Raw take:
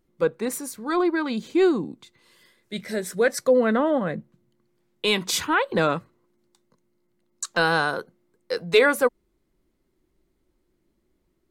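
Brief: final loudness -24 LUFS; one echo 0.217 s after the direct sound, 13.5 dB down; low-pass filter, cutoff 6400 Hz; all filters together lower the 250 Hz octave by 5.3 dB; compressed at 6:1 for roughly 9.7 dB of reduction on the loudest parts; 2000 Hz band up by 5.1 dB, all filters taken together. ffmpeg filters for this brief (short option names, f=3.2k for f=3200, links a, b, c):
-af "lowpass=6.4k,equalizer=f=250:t=o:g=-8,equalizer=f=2k:t=o:g=7.5,acompressor=threshold=-22dB:ratio=6,aecho=1:1:217:0.211,volume=4dB"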